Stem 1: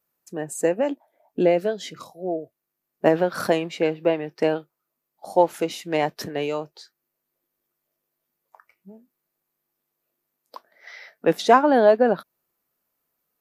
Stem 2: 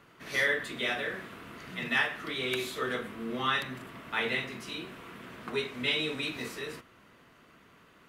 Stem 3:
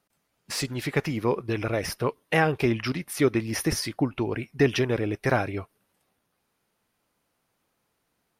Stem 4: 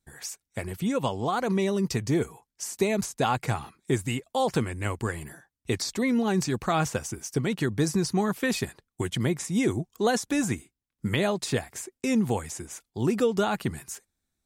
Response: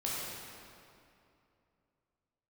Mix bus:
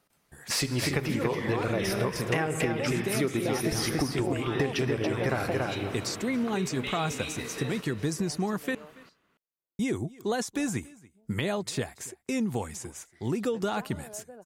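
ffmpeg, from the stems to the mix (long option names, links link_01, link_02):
-filter_complex "[0:a]acompressor=threshold=-23dB:ratio=6,adelay=2000,volume=0.5dB,asplit=2[link_01][link_02];[link_02]volume=-20.5dB[link_03];[1:a]acompressor=threshold=-36dB:ratio=6,adelay=1000,volume=1.5dB,asplit=3[link_04][link_05][link_06];[link_05]volume=-12.5dB[link_07];[link_06]volume=-13.5dB[link_08];[2:a]volume=2.5dB,asplit=4[link_09][link_10][link_11][link_12];[link_10]volume=-13dB[link_13];[link_11]volume=-4dB[link_14];[3:a]adelay=250,volume=-2.5dB,asplit=3[link_15][link_16][link_17];[link_15]atrim=end=8.75,asetpts=PTS-STARTPTS,afade=type=out:start_time=8.746:duration=0.004:curve=hsin[link_18];[link_16]atrim=start=8.75:end=9.79,asetpts=PTS-STARTPTS,volume=0[link_19];[link_17]atrim=start=9.79,asetpts=PTS-STARTPTS,afade=type=in:duration=0.004:curve=hsin[link_20];[link_18][link_19][link_20]concat=n=3:v=0:a=1,asplit=2[link_21][link_22];[link_22]volume=-24dB[link_23];[link_12]apad=whole_len=679350[link_24];[link_01][link_24]sidechaingate=range=-33dB:threshold=-44dB:ratio=16:detection=peak[link_25];[4:a]atrim=start_sample=2205[link_26];[link_07][link_13]amix=inputs=2:normalize=0[link_27];[link_27][link_26]afir=irnorm=-1:irlink=0[link_28];[link_03][link_08][link_14][link_23]amix=inputs=4:normalize=0,aecho=0:1:282:1[link_29];[link_25][link_04][link_09][link_21][link_28][link_29]amix=inputs=6:normalize=0,acompressor=threshold=-24dB:ratio=10"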